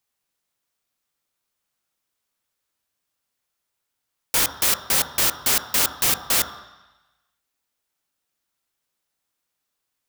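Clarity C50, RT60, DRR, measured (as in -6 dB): 10.0 dB, 1.1 s, 6.5 dB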